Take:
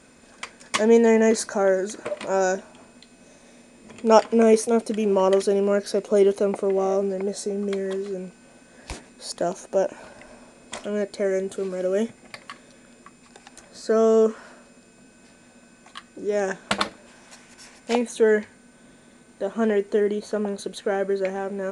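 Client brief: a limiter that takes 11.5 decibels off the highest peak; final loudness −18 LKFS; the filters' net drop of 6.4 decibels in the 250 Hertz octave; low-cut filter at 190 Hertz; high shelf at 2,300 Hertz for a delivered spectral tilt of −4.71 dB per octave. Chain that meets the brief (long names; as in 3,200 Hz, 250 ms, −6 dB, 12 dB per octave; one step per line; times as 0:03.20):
high-pass filter 190 Hz
parametric band 250 Hz −6 dB
high-shelf EQ 2,300 Hz −7.5 dB
level +9 dB
brickwall limiter −6 dBFS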